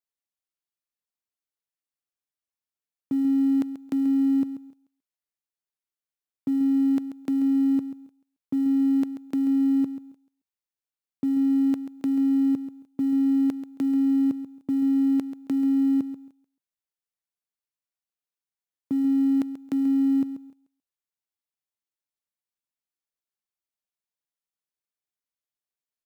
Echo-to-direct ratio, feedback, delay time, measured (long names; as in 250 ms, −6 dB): −12.0 dB, 18%, 136 ms